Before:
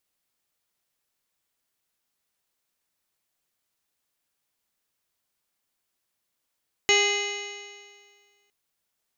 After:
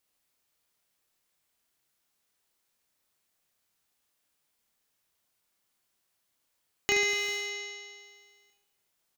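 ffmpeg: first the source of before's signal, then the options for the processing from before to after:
-f lavfi -i "aevalsrc='0.075*pow(10,-3*t/1.81)*sin(2*PI*404.36*t)+0.0376*pow(10,-3*t/1.81)*sin(2*PI*810.9*t)+0.0188*pow(10,-3*t/1.81)*sin(2*PI*1221.78*t)+0.0112*pow(10,-3*t/1.81)*sin(2*PI*1639.11*t)+0.0944*pow(10,-3*t/1.81)*sin(2*PI*2064.95*t)+0.0473*pow(10,-3*t/1.81)*sin(2*PI*2501.3*t)+0.0841*pow(10,-3*t/1.81)*sin(2*PI*2950.08*t)+0.0119*pow(10,-3*t/1.81)*sin(2*PI*3413.09*t)+0.0316*pow(10,-3*t/1.81)*sin(2*PI*3892.05*t)+0.0237*pow(10,-3*t/1.81)*sin(2*PI*4388.56*t)+0.0075*pow(10,-3*t/1.81)*sin(2*PI*4904.13*t)+0.0211*pow(10,-3*t/1.81)*sin(2*PI*5440.14*t)+0.0112*pow(10,-3*t/1.81)*sin(2*PI*5997.87*t)+0.0668*pow(10,-3*t/1.81)*sin(2*PI*6578.49*t)':d=1.61:s=44100"
-filter_complex "[0:a]asplit=2[s0][s1];[s1]aeval=exprs='val(0)*gte(abs(val(0)),0.0398)':c=same,volume=0.266[s2];[s0][s2]amix=inputs=2:normalize=0,acompressor=threshold=0.0224:ratio=2,aecho=1:1:30|75|142.5|243.8|395.6:0.631|0.398|0.251|0.158|0.1"

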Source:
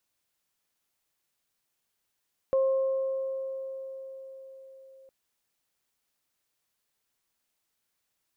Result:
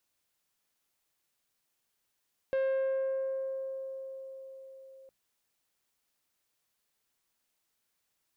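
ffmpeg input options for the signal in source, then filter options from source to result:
-f lavfi -i "aevalsrc='0.0944*pow(10,-3*t/4.99)*sin(2*PI*533*t)+0.0126*pow(10,-3*t/2.75)*sin(2*PI*1066*t)':d=2.56:s=44100"
-af "bandreject=f=60:t=h:w=6,bandreject=f=120:t=h:w=6,bandreject=f=180:t=h:w=6,asoftclip=type=tanh:threshold=0.0447"

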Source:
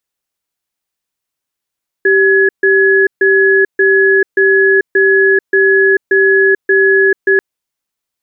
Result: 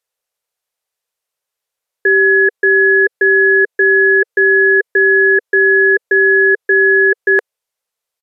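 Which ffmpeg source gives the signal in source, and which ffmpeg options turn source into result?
-f lavfi -i "aevalsrc='0.355*(sin(2*PI*389*t)+sin(2*PI*1690*t))*clip(min(mod(t,0.58),0.44-mod(t,0.58))/0.005,0,1)':d=5.34:s=44100"
-af "lowshelf=f=380:t=q:w=3:g=-7.5,aresample=32000,aresample=44100"

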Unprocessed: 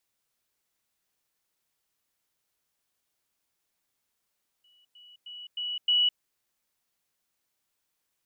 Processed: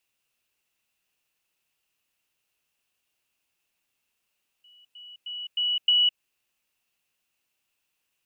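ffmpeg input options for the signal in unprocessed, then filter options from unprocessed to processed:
-f lavfi -i "aevalsrc='pow(10,(-60+10*floor(t/0.31))/20)*sin(2*PI*2940*t)*clip(min(mod(t,0.31),0.21-mod(t,0.31))/0.005,0,1)':d=1.55:s=44100"
-af "equalizer=f=2700:w=4.8:g=13,acompressor=threshold=0.112:ratio=6"

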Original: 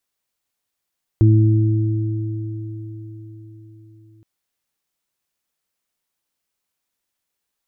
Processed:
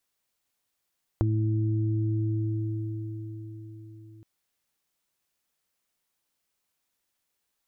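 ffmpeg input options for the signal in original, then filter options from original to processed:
-f lavfi -i "aevalsrc='0.376*pow(10,-3*t/4.59)*sin(2*PI*109*t)+0.075*pow(10,-3*t/2.86)*sin(2*PI*218*t)+0.15*pow(10,-3*t/4.97)*sin(2*PI*327*t)':d=3.02:s=44100"
-af "acompressor=threshold=0.0562:ratio=6"

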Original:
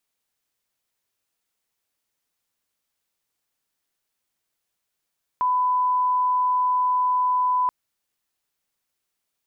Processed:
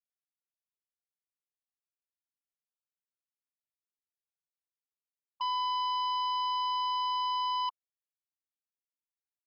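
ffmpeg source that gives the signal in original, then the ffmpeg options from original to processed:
-f lavfi -i "sine=f=1000:d=2.28:r=44100,volume=0.06dB"
-af "afftfilt=real='re*gte(hypot(re,im),0.251)':imag='im*gte(hypot(re,im),0.251)':win_size=1024:overlap=0.75,aresample=11025,asoftclip=type=hard:threshold=0.0299,aresample=44100"

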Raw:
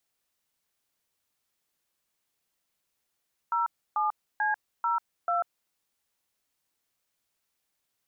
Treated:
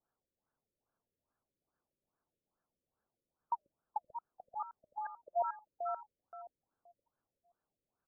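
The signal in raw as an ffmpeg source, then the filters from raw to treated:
-f lavfi -i "aevalsrc='0.0473*clip(min(mod(t,0.44),0.143-mod(t,0.44))/0.002,0,1)*(eq(floor(t/0.44),0)*(sin(2*PI*941*mod(t,0.44))+sin(2*PI*1336*mod(t,0.44)))+eq(floor(t/0.44),1)*(sin(2*PI*852*mod(t,0.44))+sin(2*PI*1209*mod(t,0.44)))+eq(floor(t/0.44),2)*(sin(2*PI*852*mod(t,0.44))+sin(2*PI*1633*mod(t,0.44)))+eq(floor(t/0.44),3)*(sin(2*PI*941*mod(t,0.44))+sin(2*PI*1336*mod(t,0.44)))+eq(floor(t/0.44),4)*(sin(2*PI*697*mod(t,0.44))+sin(2*PI*1336*mod(t,0.44))))':d=2.2:s=44100"
-filter_complex "[0:a]asplit=2[s0][s1];[s1]adelay=524,lowpass=f=1200:p=1,volume=0.447,asplit=2[s2][s3];[s3]adelay=524,lowpass=f=1200:p=1,volume=0.3,asplit=2[s4][s5];[s5]adelay=524,lowpass=f=1200:p=1,volume=0.3,asplit=2[s6][s7];[s7]adelay=524,lowpass=f=1200:p=1,volume=0.3[s8];[s0][s2][s4][s6][s8]amix=inputs=5:normalize=0,afftfilt=real='re*lt(b*sr/1024,570*pow(1800/570,0.5+0.5*sin(2*PI*2.4*pts/sr)))':imag='im*lt(b*sr/1024,570*pow(1800/570,0.5+0.5*sin(2*PI*2.4*pts/sr)))':win_size=1024:overlap=0.75"

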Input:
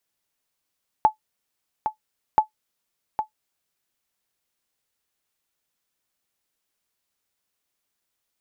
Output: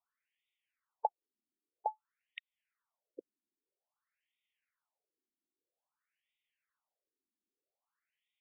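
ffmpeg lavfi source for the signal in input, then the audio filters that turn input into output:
-f lavfi -i "aevalsrc='0.473*(sin(2*PI*863*mod(t,1.33))*exp(-6.91*mod(t,1.33)/0.11)+0.376*sin(2*PI*863*max(mod(t,1.33)-0.81,0))*exp(-6.91*max(mod(t,1.33)-0.81,0)/0.11))':d=2.66:s=44100"
-af "acompressor=threshold=0.0447:ratio=12,afftfilt=real='re*between(b*sr/1024,270*pow(2700/270,0.5+0.5*sin(2*PI*0.51*pts/sr))/1.41,270*pow(2700/270,0.5+0.5*sin(2*PI*0.51*pts/sr))*1.41)':imag='im*between(b*sr/1024,270*pow(2700/270,0.5+0.5*sin(2*PI*0.51*pts/sr))/1.41,270*pow(2700/270,0.5+0.5*sin(2*PI*0.51*pts/sr))*1.41)':win_size=1024:overlap=0.75"

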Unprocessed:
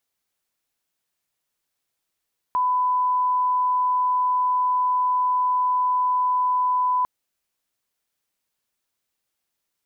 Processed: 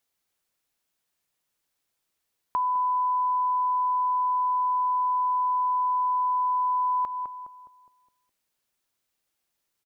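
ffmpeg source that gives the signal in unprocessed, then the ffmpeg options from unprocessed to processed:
-f lavfi -i "sine=f=1000:d=4.5:r=44100,volume=0.06dB"
-filter_complex "[0:a]asplit=2[s0][s1];[s1]adelay=207,lowpass=f=1000:p=1,volume=0.355,asplit=2[s2][s3];[s3]adelay=207,lowpass=f=1000:p=1,volume=0.52,asplit=2[s4][s5];[s5]adelay=207,lowpass=f=1000:p=1,volume=0.52,asplit=2[s6][s7];[s7]adelay=207,lowpass=f=1000:p=1,volume=0.52,asplit=2[s8][s9];[s9]adelay=207,lowpass=f=1000:p=1,volume=0.52,asplit=2[s10][s11];[s11]adelay=207,lowpass=f=1000:p=1,volume=0.52[s12];[s2][s4][s6][s8][s10][s12]amix=inputs=6:normalize=0[s13];[s0][s13]amix=inputs=2:normalize=0,acompressor=threshold=0.0562:ratio=3"

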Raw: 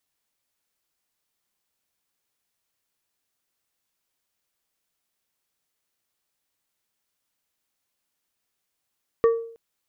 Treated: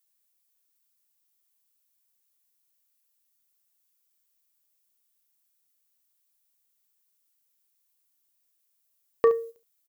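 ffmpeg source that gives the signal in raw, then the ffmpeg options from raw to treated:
-f lavfi -i "aevalsrc='0.251*pow(10,-3*t/0.56)*sin(2*PI*459*t)+0.075*pow(10,-3*t/0.295)*sin(2*PI*1147.5*t)+0.0224*pow(10,-3*t/0.212)*sin(2*PI*1836*t)':d=0.32:s=44100"
-af "agate=range=0.316:threshold=0.0141:ratio=16:detection=peak,aemphasis=mode=production:type=75kf,aecho=1:1:33|71:0.211|0.188"

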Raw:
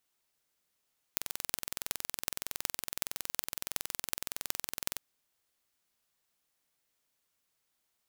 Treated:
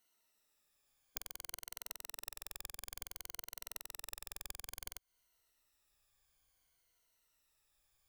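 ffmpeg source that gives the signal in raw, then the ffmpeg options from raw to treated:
-f lavfi -i "aevalsrc='0.794*eq(mod(n,2042),0)*(0.5+0.5*eq(mod(n,16336),0))':d=3.84:s=44100"
-af "afftfilt=real='re*pow(10,11/40*sin(2*PI*(1.9*log(max(b,1)*sr/1024/100)/log(2)-(-0.57)*(pts-256)/sr)))':imag='im*pow(10,11/40*sin(2*PI*(1.9*log(max(b,1)*sr/1024/100)/log(2)-(-0.57)*(pts-256)/sr)))':win_size=1024:overlap=0.75,asubboost=boost=8:cutoff=69,acompressor=threshold=0.01:ratio=5"

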